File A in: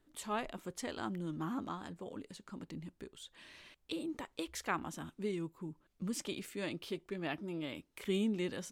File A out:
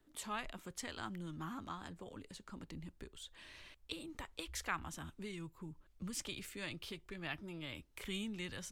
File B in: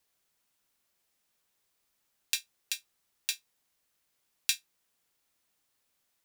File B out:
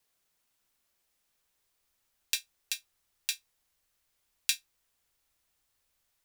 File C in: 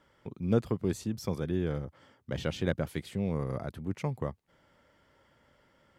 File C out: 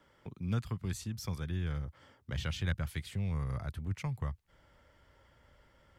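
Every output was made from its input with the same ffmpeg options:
ffmpeg -i in.wav -filter_complex "[0:a]asubboost=boost=4.5:cutoff=89,acrossover=split=180|1000|3000[link_01][link_02][link_03][link_04];[link_02]acompressor=threshold=-50dB:ratio=6[link_05];[link_01][link_05][link_03][link_04]amix=inputs=4:normalize=0" out.wav

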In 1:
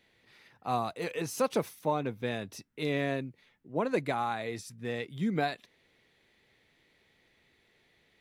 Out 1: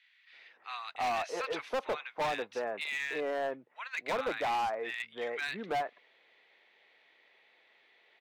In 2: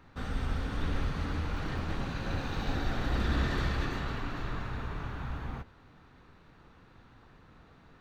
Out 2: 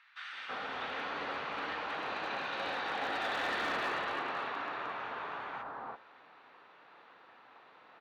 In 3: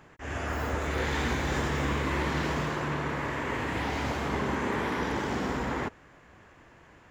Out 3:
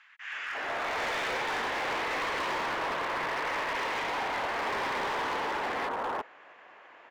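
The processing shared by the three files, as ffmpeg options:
ffmpeg -i in.wav -filter_complex "[0:a]asuperpass=centerf=1400:order=4:qfactor=0.53,acrossover=split=1500[link_01][link_02];[link_01]adelay=330[link_03];[link_03][link_02]amix=inputs=2:normalize=0,asoftclip=type=hard:threshold=-35dB,volume=6.5dB" out.wav

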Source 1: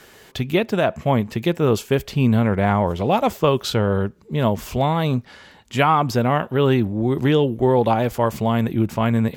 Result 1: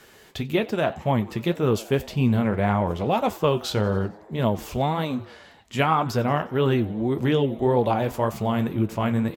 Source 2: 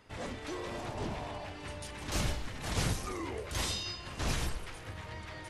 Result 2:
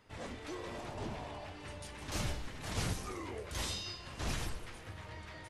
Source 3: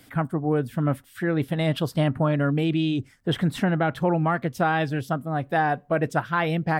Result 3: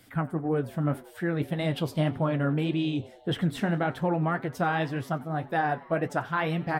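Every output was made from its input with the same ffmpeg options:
ffmpeg -i in.wav -filter_complex "[0:a]flanger=delay=8.1:depth=6.7:regen=-57:speed=1.8:shape=triangular,asplit=2[link_01][link_02];[link_02]asplit=5[link_03][link_04][link_05][link_06][link_07];[link_03]adelay=90,afreqshift=110,volume=-22dB[link_08];[link_04]adelay=180,afreqshift=220,volume=-26.2dB[link_09];[link_05]adelay=270,afreqshift=330,volume=-30.3dB[link_10];[link_06]adelay=360,afreqshift=440,volume=-34.5dB[link_11];[link_07]adelay=450,afreqshift=550,volume=-38.6dB[link_12];[link_08][link_09][link_10][link_11][link_12]amix=inputs=5:normalize=0[link_13];[link_01][link_13]amix=inputs=2:normalize=0" out.wav

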